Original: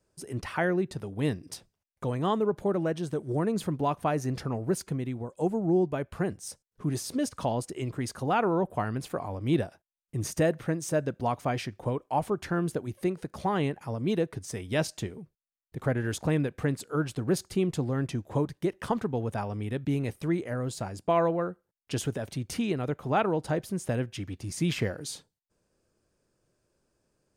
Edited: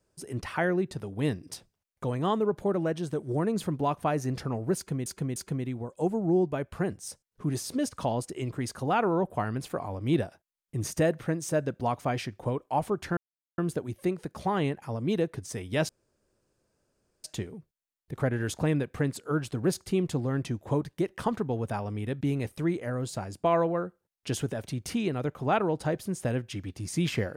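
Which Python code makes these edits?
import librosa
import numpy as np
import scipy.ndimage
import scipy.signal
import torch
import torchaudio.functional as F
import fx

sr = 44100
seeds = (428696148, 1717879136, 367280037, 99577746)

y = fx.edit(x, sr, fx.repeat(start_s=4.76, length_s=0.3, count=3),
    fx.insert_silence(at_s=12.57, length_s=0.41),
    fx.insert_room_tone(at_s=14.88, length_s=1.35), tone=tone)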